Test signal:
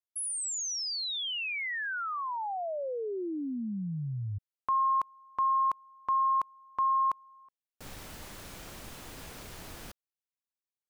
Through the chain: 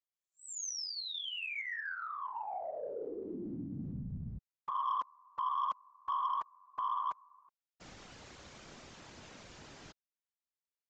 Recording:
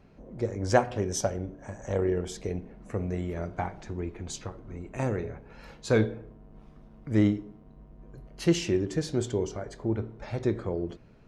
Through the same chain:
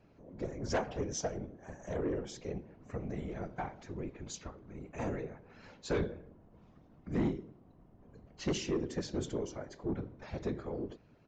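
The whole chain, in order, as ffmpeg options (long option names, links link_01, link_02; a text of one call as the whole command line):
ffmpeg -i in.wav -af "highpass=frequency=71:poles=1,afftfilt=real='hypot(re,im)*cos(2*PI*random(0))':imag='hypot(re,im)*sin(2*PI*random(1))':win_size=512:overlap=0.75,aresample=16000,asoftclip=type=tanh:threshold=-25.5dB,aresample=44100" out.wav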